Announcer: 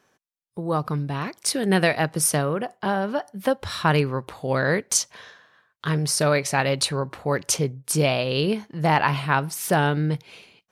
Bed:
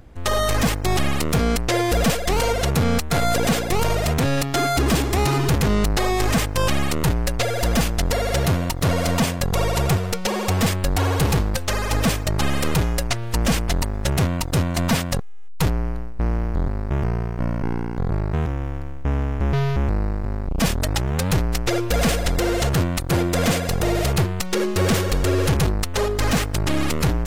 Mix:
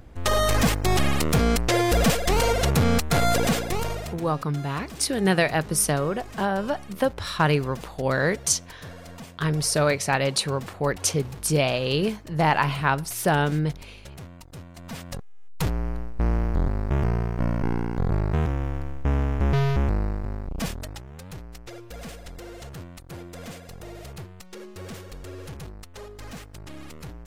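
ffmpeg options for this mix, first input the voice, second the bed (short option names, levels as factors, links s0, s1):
-filter_complex "[0:a]adelay=3550,volume=0.891[s0];[1:a]volume=9.44,afade=t=out:st=3.29:d=0.95:silence=0.0944061,afade=t=in:st=14.83:d=1.46:silence=0.0944061,afade=t=out:st=19.71:d=1.33:silence=0.11885[s1];[s0][s1]amix=inputs=2:normalize=0"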